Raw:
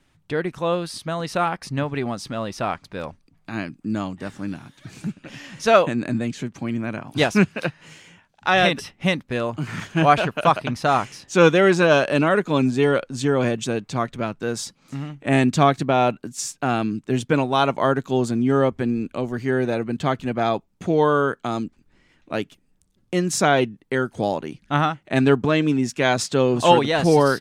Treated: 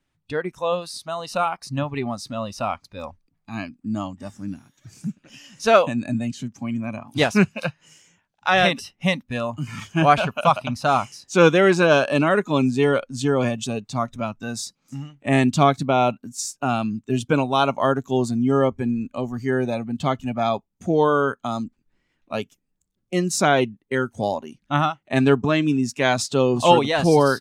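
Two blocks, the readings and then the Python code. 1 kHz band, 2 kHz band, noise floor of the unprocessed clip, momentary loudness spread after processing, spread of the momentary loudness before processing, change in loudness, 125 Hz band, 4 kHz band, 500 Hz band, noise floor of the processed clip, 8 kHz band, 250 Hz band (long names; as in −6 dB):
0.0 dB, −0.5 dB, −63 dBFS, 15 LU, 14 LU, 0.0 dB, −0.5 dB, 0.0 dB, −0.5 dB, −74 dBFS, 0.0 dB, −0.5 dB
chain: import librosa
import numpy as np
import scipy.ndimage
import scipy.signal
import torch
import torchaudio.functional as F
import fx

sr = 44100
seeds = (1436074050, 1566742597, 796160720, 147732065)

y = fx.noise_reduce_blind(x, sr, reduce_db=12)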